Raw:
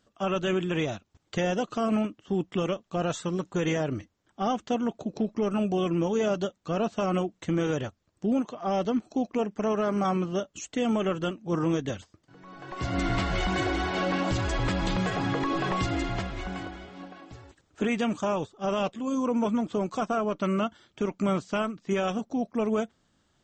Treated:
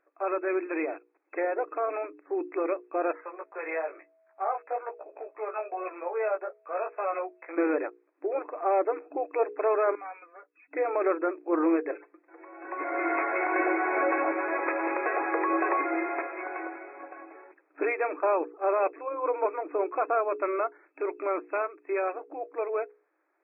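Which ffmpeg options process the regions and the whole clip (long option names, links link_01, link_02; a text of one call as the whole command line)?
ffmpeg -i in.wav -filter_complex "[0:a]asettb=1/sr,asplit=3[link_01][link_02][link_03];[link_01]atrim=end=3.214[link_04];[link_02]atrim=start=3.21:end=7.58,asetpts=PTS-STARTPTS,afade=type=in:duration=0.004:curve=qsin,afade=type=out:start_time=4.366:duration=0.004:curve=qsin,highpass=frequency=510:width=0.5412,highpass=frequency=510:width=1.3066,flanger=delay=16.5:depth=2.4:speed=1.1,aeval=exprs='val(0)+0.000501*sin(2*PI*650*n/s)':channel_layout=same[link_05];[link_03]atrim=start=7.576[link_06];[link_04][link_05]acrossfade=duration=0.004:curve1=hsin:curve2=qsin[link_07];[link_07][link_06]acrossfade=duration=0.004:curve1=qsin:curve2=hsin,asettb=1/sr,asplit=3[link_08][link_09][link_10];[link_08]atrim=end=9.954[link_11];[link_09]atrim=start=9.95:end=10.71,asetpts=PTS-STARTPTS,afade=type=in:duration=0.004:curve=qsin,afade=type=out:start_time=0.756:duration=0.004:curve=qsin,aderivative,aecho=1:1:4.1:0.95,atrim=end_sample=33516[link_12];[link_10]atrim=start=10.706[link_13];[link_11][link_12]acrossfade=duration=0.004:curve1=hsin:curve2=qsin[link_14];[link_14][link_13]acrossfade=duration=0.004:curve1=qsin:curve2=hsin,asettb=1/sr,asplit=3[link_15][link_16][link_17];[link_15]atrim=end=11.914[link_18];[link_16]atrim=start=11.91:end=12.65,asetpts=PTS-STARTPTS,afade=type=in:duration=0.004:curve=qsin,afade=type=out:start_time=0.736:duration=0.004:curve=qsin,aecho=1:1:5.8:0.81,atrim=end_sample=32634,acrossover=split=310|3000[link_19][link_20][link_21];[link_20]acompressor=threshold=-48dB:ratio=3:attack=3.2:release=140:knee=2.83:detection=peak[link_22];[link_19][link_22][link_21]amix=inputs=3:normalize=0[link_23];[link_17]atrim=start=12.646[link_24];[link_18][link_23]acrossfade=duration=0.004:curve1=hsin:curve2=qsin[link_25];[link_25][link_24]acrossfade=duration=0.004:curve1=qsin:curve2=hsin,afftfilt=real='re*between(b*sr/4096,290,2600)':imag='im*between(b*sr/4096,290,2600)':win_size=4096:overlap=0.75,bandreject=frequency=60:width_type=h:width=6,bandreject=frequency=120:width_type=h:width=6,bandreject=frequency=180:width_type=h:width=6,bandreject=frequency=240:width_type=h:width=6,bandreject=frequency=300:width_type=h:width=6,bandreject=frequency=360:width_type=h:width=6,bandreject=frequency=420:width_type=h:width=6,bandreject=frequency=480:width_type=h:width=6,dynaudnorm=framelen=300:gausssize=21:maxgain=3.5dB" out.wav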